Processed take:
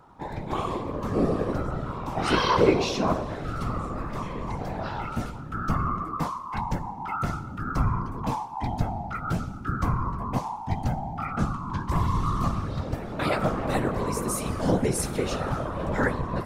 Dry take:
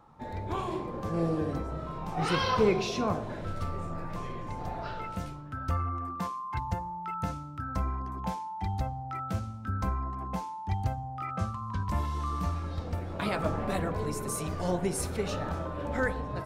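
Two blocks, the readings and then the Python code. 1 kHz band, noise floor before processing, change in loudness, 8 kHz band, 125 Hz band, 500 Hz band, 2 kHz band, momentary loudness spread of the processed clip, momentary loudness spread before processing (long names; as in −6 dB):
+4.5 dB, −40 dBFS, +5.0 dB, +5.0 dB, +4.5 dB, +4.5 dB, +4.5 dB, 8 LU, 8 LU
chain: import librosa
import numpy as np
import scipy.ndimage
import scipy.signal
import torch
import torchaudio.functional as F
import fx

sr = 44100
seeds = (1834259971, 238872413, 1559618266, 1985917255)

y = fx.chorus_voices(x, sr, voices=2, hz=0.53, base_ms=16, depth_ms=1.7, mix_pct=30)
y = fx.rev_schroeder(y, sr, rt60_s=2.1, comb_ms=38, drr_db=18.5)
y = fx.whisperise(y, sr, seeds[0])
y = y * 10.0 ** (7.0 / 20.0)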